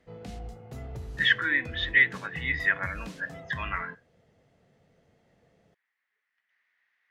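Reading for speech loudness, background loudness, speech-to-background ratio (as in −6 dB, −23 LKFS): −26.0 LKFS, −42.0 LKFS, 16.0 dB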